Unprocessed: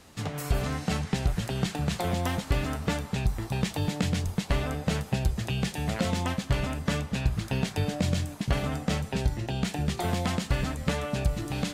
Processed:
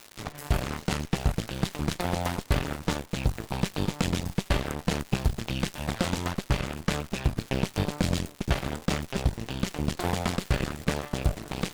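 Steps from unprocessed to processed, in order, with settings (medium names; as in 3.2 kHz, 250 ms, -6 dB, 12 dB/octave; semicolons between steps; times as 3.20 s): Chebyshev shaper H 6 -15 dB, 7 -18 dB, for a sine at -13.5 dBFS; crackle 220 per s -33 dBFS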